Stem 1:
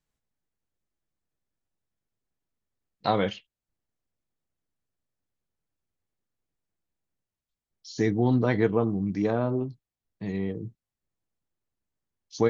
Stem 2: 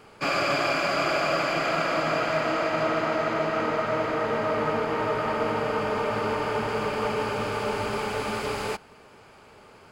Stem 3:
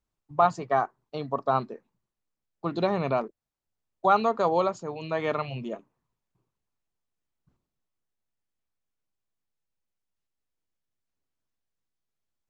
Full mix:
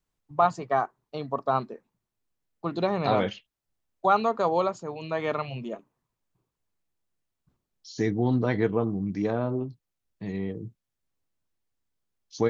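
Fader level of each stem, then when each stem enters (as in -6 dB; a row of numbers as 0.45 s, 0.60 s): -1.5 dB, mute, -0.5 dB; 0.00 s, mute, 0.00 s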